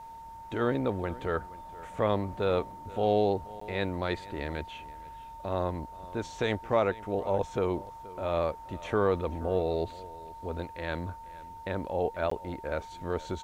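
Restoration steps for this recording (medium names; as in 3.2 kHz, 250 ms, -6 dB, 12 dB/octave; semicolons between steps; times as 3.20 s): band-stop 910 Hz, Q 30; interpolate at 3.60/12.30 s, 14 ms; inverse comb 476 ms -19.5 dB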